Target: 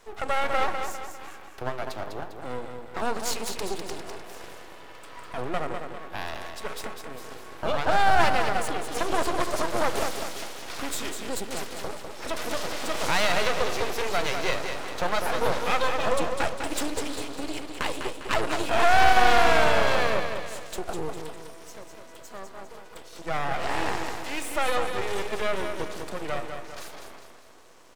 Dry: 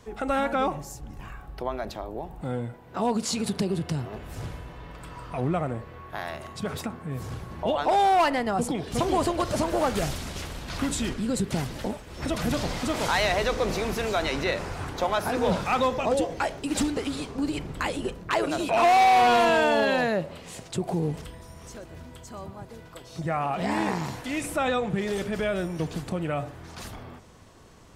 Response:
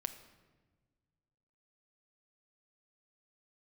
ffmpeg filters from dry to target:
-filter_complex "[0:a]highpass=f=330:w=0.5412,highpass=f=330:w=1.3066,aecho=1:1:201|402|603|804|1005:0.473|0.218|0.1|0.0461|0.0212,aeval=exprs='max(val(0),0)':c=same,asplit=2[a][b];[1:a]atrim=start_sample=2205[c];[b][c]afir=irnorm=-1:irlink=0,volume=-5dB[d];[a][d]amix=inputs=2:normalize=0"

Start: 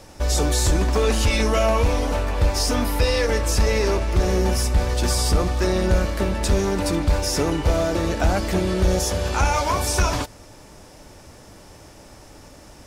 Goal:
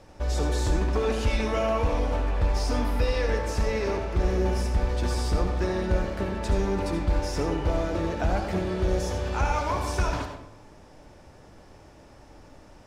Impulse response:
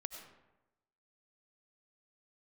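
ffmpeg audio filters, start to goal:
-filter_complex "[0:a]lowpass=f=2.5k:p=1[a];[1:a]atrim=start_sample=2205,asetrate=57330,aresample=44100[b];[a][b]afir=irnorm=-1:irlink=0"

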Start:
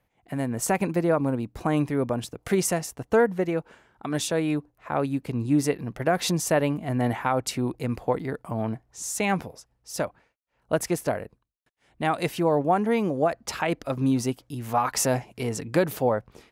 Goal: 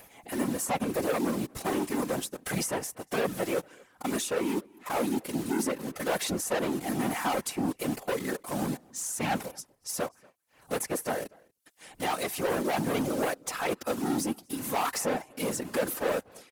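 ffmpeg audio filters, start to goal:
-filter_complex "[0:a]asplit=2[a][b];[b]acrusher=bits=5:mix=0:aa=0.000001,volume=-5dB[c];[a][c]amix=inputs=2:normalize=0,equalizer=f=11k:w=0.49:g=13,acrossover=split=2100[d][e];[e]acompressor=threshold=-30dB:ratio=6[f];[d][f]amix=inputs=2:normalize=0,aecho=1:1:3.9:0.86,acompressor=mode=upward:threshold=-29dB:ratio=2.5,volume=19dB,asoftclip=hard,volume=-19dB,asplit=2[g][h];[h]adelay=239.1,volume=-26dB,highshelf=f=4k:g=-5.38[i];[g][i]amix=inputs=2:normalize=0,afftfilt=real='hypot(re,im)*cos(2*PI*random(0))':imag='hypot(re,im)*sin(2*PI*random(1))':win_size=512:overlap=0.75,lowshelf=f=110:g=-11.5"

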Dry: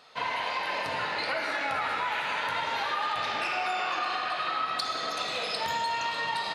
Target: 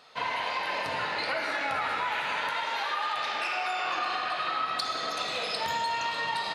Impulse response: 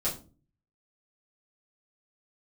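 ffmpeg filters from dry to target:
-filter_complex "[0:a]asettb=1/sr,asplit=3[a][b][c];[a]atrim=end=2.494[d];[b]atrim=start=2.49:end=3.85,asetpts=PTS-STARTPTS,afade=t=in:d=0.004:c=qsin,afade=t=out:st=1.356:d=0.004:c=qsin,highpass=f=460:p=1[e];[c]atrim=start=3.846[f];[d][e]acrossfade=d=0.004:c1=hsin:c2=qsin[g];[g][f]acrossfade=d=0.004:c1=qsin:c2=hsin"

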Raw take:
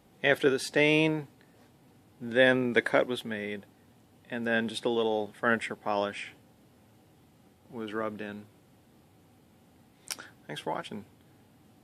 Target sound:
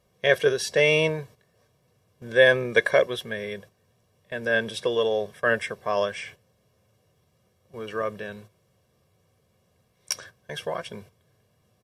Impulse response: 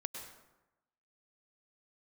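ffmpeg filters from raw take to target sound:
-af "equalizer=f=5.7k:w=7.3:g=8.5,agate=range=-9dB:threshold=-48dB:ratio=16:detection=peak,aecho=1:1:1.8:0.85,volume=1.5dB"

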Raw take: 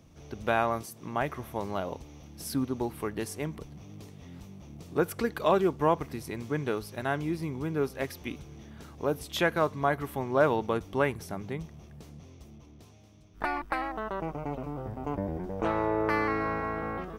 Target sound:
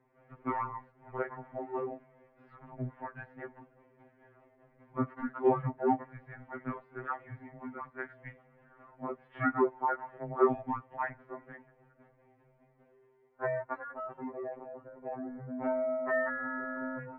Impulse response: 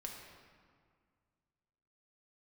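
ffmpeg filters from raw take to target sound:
-af "highpass=f=450:t=q:w=0.5412,highpass=f=450:t=q:w=1.307,lowpass=f=2.1k:t=q:w=0.5176,lowpass=f=2.1k:t=q:w=0.7071,lowpass=f=2.1k:t=q:w=1.932,afreqshift=-230,afftfilt=real='re*2.45*eq(mod(b,6),0)':imag='im*2.45*eq(mod(b,6),0)':win_size=2048:overlap=0.75"

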